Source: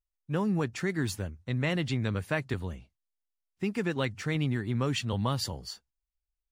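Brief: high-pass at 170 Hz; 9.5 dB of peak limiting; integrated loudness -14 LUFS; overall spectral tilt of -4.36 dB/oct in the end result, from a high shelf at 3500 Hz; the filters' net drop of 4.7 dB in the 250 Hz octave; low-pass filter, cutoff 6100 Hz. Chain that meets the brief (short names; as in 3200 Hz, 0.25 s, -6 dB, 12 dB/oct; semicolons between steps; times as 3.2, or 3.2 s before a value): HPF 170 Hz; LPF 6100 Hz; bell 250 Hz -4.5 dB; high shelf 3500 Hz +7.5 dB; gain +21.5 dB; limiter -0.5 dBFS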